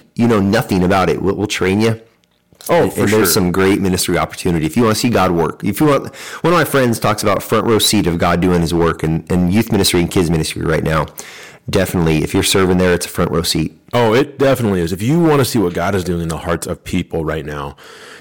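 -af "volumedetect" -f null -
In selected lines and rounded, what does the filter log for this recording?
mean_volume: -14.9 dB
max_volume: -8.1 dB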